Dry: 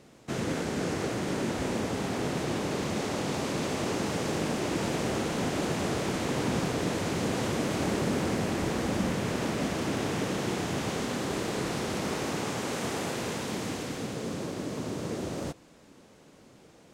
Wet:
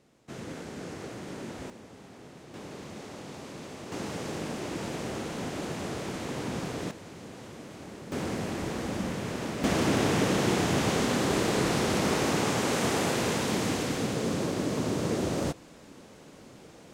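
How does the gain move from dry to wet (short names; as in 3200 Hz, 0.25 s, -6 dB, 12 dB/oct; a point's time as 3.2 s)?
-9 dB
from 1.7 s -18 dB
from 2.54 s -11.5 dB
from 3.92 s -5 dB
from 6.91 s -15 dB
from 8.12 s -3.5 dB
from 9.64 s +5 dB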